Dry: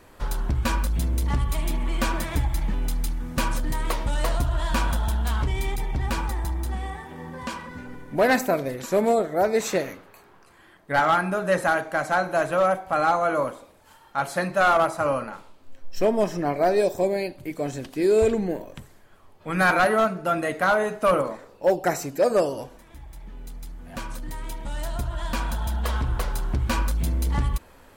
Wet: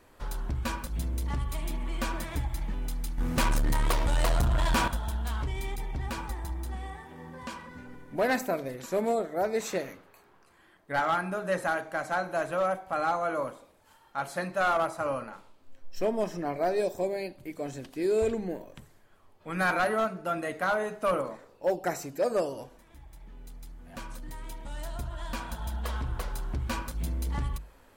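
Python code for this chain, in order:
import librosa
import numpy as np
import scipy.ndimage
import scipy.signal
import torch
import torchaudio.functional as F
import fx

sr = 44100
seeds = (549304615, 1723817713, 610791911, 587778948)

y = fx.hum_notches(x, sr, base_hz=50, count=4)
y = fx.leveller(y, sr, passes=3, at=(3.18, 4.88))
y = F.gain(torch.from_numpy(y), -7.0).numpy()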